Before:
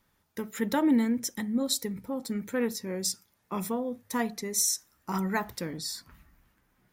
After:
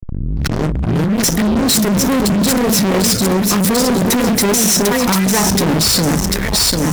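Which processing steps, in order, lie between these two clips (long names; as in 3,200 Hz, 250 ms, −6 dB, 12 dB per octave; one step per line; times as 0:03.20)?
turntable start at the beginning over 1.28 s
low-shelf EQ 110 Hz +8.5 dB
in parallel at +3 dB: output level in coarse steps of 20 dB
on the sum: brickwall limiter −18 dBFS, peak gain reduction 11 dB
compressor whose output falls as the input rises −30 dBFS, ratio −0.5
on a send: delay that swaps between a low-pass and a high-pass 373 ms, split 840 Hz, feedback 63%, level −3 dB
on the sum: rotating-speaker cabinet horn 6.7 Hz, later 0.65 Hz, at 0:03.38
fuzz pedal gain 46 dB, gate −54 dBFS
saturating transformer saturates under 170 Hz
level +2 dB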